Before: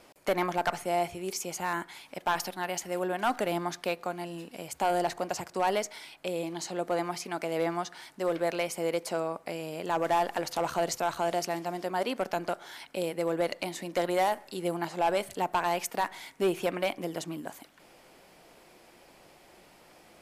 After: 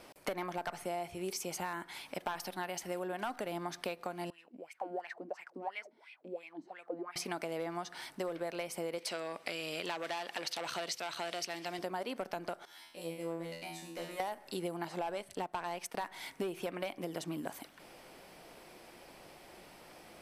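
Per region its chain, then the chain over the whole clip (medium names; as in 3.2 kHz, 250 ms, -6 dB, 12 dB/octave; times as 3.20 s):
4.30–7.16 s: treble shelf 7.5 kHz +9.5 dB + wah-wah 2.9 Hz 240–2400 Hz, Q 6.6
8.98–11.79 s: frequency weighting D + transformer saturation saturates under 1.8 kHz
12.65–14.20 s: treble shelf 4.6 kHz +4.5 dB + feedback comb 83 Hz, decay 0.59 s, mix 100%
15.12–16.01 s: companding laws mixed up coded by A + low-pass 11 kHz + band-stop 7 kHz, Q 23
whole clip: compression 10:1, threshold -36 dBFS; band-stop 6.9 kHz, Q 9.9; trim +1.5 dB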